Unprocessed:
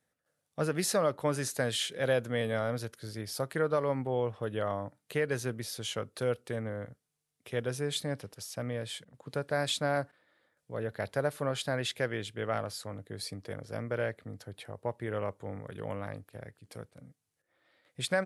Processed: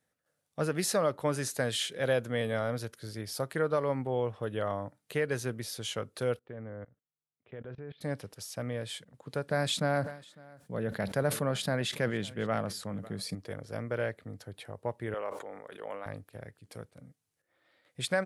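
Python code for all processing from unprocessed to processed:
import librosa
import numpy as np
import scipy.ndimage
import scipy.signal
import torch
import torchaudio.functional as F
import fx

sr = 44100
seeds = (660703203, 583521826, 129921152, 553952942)

y = fx.chain(x, sr, fx.gaussian_blur(sigma=3.4),
    fx.level_steps(step_db=21), at=(6.39, 8.01))
y = fx.chain(y, sr, fx.peak_eq(hz=190.0, db=11.5, octaves=0.52),
    fx.echo_single(ms=552, db=-24.0),
    fx.sustainer(db_per_s=110.0), at=(9.47, 13.35))
y = fx.chain(y, sr, fx.highpass(hz=460.0, slope=12),
    fx.high_shelf(hz=4600.0, db=-6.0),
    fx.sustainer(db_per_s=62.0), at=(15.14, 16.06))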